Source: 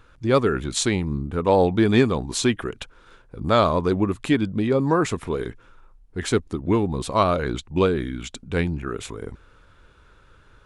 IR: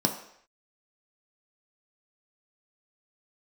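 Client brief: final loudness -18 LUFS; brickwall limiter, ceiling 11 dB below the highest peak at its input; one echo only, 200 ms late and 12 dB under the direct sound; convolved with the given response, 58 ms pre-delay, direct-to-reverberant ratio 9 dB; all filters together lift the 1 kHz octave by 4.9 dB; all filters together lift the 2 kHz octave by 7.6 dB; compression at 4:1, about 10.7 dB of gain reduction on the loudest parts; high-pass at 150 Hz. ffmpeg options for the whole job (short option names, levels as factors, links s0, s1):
-filter_complex "[0:a]highpass=150,equalizer=f=1000:t=o:g=3.5,equalizer=f=2000:t=o:g=8.5,acompressor=threshold=0.0708:ratio=4,alimiter=limit=0.106:level=0:latency=1,aecho=1:1:200:0.251,asplit=2[s0][s1];[1:a]atrim=start_sample=2205,adelay=58[s2];[s1][s2]afir=irnorm=-1:irlink=0,volume=0.119[s3];[s0][s3]amix=inputs=2:normalize=0,volume=3.76"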